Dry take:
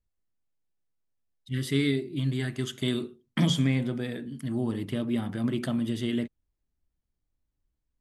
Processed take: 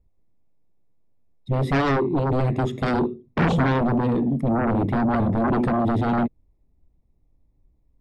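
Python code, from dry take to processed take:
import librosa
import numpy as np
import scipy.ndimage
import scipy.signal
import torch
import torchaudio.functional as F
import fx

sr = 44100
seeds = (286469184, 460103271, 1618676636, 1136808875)

p1 = scipy.signal.lfilter(np.full(29, 1.0 / 29), 1.0, x)
p2 = fx.fold_sine(p1, sr, drive_db=18, ceiling_db=-14.0)
p3 = p1 + F.gain(torch.from_numpy(p2), -7.0).numpy()
y = F.gain(torch.from_numpy(p3), 1.5).numpy()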